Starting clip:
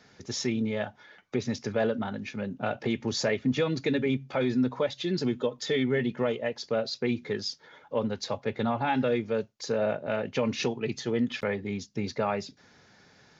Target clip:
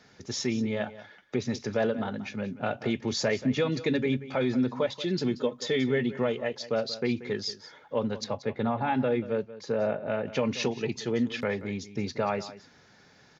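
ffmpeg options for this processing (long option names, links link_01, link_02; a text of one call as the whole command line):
ffmpeg -i in.wav -filter_complex "[0:a]asettb=1/sr,asplit=3[link_01][link_02][link_03];[link_01]atrim=end=8.244[link_04];[link_02]atrim=start=8.24:end=10.27,asetpts=PTS-STARTPTS,afade=type=in:duration=0.004:curve=qsin,afade=type=out:start_time=2.026:duration=0.004:curve=qsin,aemphasis=mode=reproduction:type=75kf[link_05];[link_03]atrim=start=10.266[link_06];[link_04][link_05]acrossfade=duration=0.004:curve1=hsin:curve2=qsin[link_07];[link_07][link_06]acrossfade=duration=0.004:curve1=qsin:curve2=hsin,aecho=1:1:182:0.168" out.wav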